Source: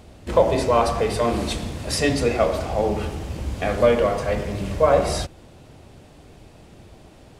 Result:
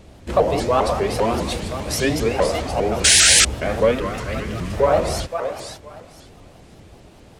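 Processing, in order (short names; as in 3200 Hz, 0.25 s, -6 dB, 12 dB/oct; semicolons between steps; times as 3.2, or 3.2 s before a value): thinning echo 0.517 s, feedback 22%, high-pass 510 Hz, level -7 dB; 3.04–3.45 painted sound noise 1400–10000 Hz -12 dBFS; in parallel at -8.5 dB: soft clip -14 dBFS, distortion -10 dB; 3.91–4.73 on the sum: band shelf 650 Hz -8.5 dB 1.3 oct; shaped vibrato saw up 5 Hz, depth 250 cents; gain -2 dB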